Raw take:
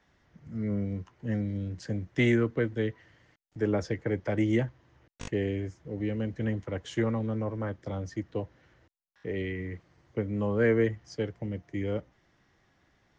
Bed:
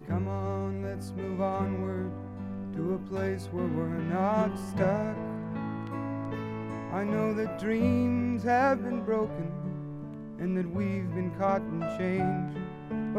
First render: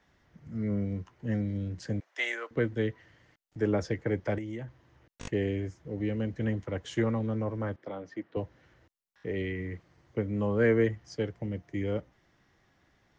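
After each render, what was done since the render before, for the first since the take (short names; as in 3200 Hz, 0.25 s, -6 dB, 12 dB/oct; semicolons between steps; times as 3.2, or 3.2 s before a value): 2–2.51 HPF 620 Hz 24 dB/oct; 4.38–5.24 compressor 4:1, threshold -36 dBFS; 7.76–8.37 BPF 290–2900 Hz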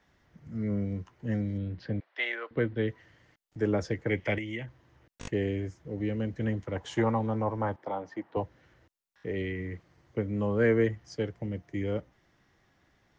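1.58–2.88 steep low-pass 4400 Hz; 4.09–4.66 band shelf 2500 Hz +12.5 dB 1 oct; 6.76–8.43 bell 870 Hz +14 dB 0.65 oct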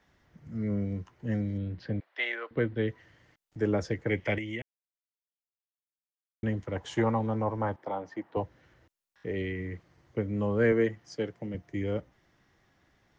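4.62–6.43 mute; 10.72–11.55 HPF 150 Hz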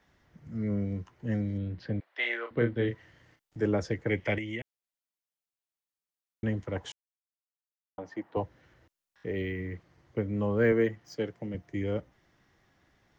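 2.2–3.66 doubler 34 ms -6 dB; 6.92–7.98 mute; 9.29–11.15 decimation joined by straight lines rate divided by 2×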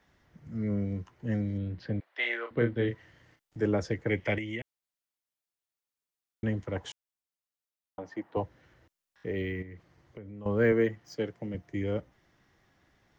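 9.62–10.46 compressor 4:1, threshold -43 dBFS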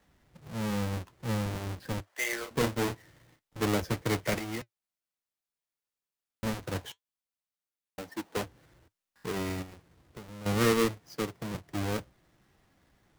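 half-waves squared off; flange 1.1 Hz, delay 3.6 ms, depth 2.8 ms, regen -70%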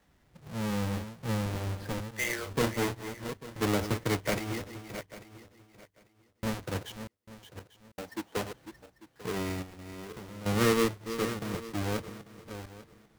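regenerating reverse delay 0.422 s, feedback 43%, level -10 dB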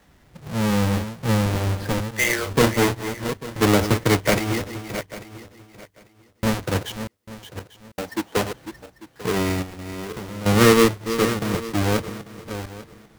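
gain +11 dB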